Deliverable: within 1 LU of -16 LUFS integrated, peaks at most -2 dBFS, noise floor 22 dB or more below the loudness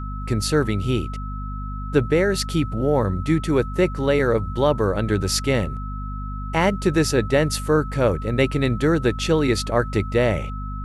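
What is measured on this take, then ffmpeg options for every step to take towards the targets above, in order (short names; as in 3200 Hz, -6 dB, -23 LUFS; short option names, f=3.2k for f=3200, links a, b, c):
hum 50 Hz; harmonics up to 250 Hz; hum level -27 dBFS; steady tone 1300 Hz; tone level -35 dBFS; loudness -21.5 LUFS; peak -4.5 dBFS; loudness target -16.0 LUFS
-> -af "bandreject=f=50:t=h:w=4,bandreject=f=100:t=h:w=4,bandreject=f=150:t=h:w=4,bandreject=f=200:t=h:w=4,bandreject=f=250:t=h:w=4"
-af "bandreject=f=1.3k:w=30"
-af "volume=5.5dB,alimiter=limit=-2dB:level=0:latency=1"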